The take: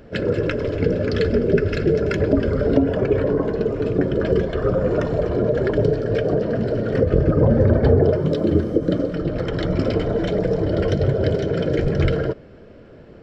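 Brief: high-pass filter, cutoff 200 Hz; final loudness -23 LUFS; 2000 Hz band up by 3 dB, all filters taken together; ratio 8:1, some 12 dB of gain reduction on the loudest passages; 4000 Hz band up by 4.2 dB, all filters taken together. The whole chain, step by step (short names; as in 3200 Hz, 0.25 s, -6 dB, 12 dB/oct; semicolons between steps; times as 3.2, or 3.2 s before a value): HPF 200 Hz; bell 2000 Hz +3 dB; bell 4000 Hz +4.5 dB; compressor 8:1, threshold -26 dBFS; gain +7 dB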